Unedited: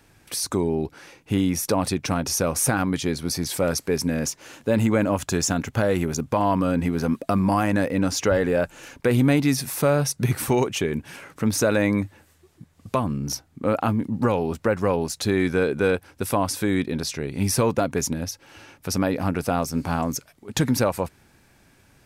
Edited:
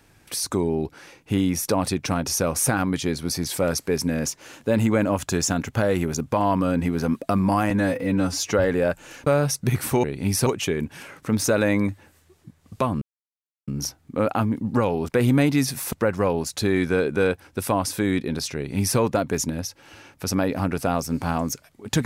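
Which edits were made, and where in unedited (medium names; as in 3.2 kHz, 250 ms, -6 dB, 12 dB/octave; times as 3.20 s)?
7.70–8.25 s: stretch 1.5×
8.99–9.83 s: move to 14.56 s
13.15 s: insert silence 0.66 s
17.19–17.62 s: copy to 10.60 s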